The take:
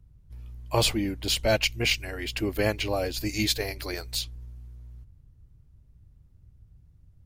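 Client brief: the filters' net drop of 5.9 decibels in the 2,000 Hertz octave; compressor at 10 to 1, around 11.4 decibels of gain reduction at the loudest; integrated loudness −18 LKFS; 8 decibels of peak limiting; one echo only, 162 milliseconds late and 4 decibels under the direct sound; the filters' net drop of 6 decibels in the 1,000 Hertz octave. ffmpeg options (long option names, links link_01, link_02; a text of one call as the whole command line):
ffmpeg -i in.wav -af "equalizer=frequency=1000:width_type=o:gain=-7.5,equalizer=frequency=2000:width_type=o:gain=-6,acompressor=threshold=-32dB:ratio=10,alimiter=level_in=4dB:limit=-24dB:level=0:latency=1,volume=-4dB,aecho=1:1:162:0.631,volume=20dB" out.wav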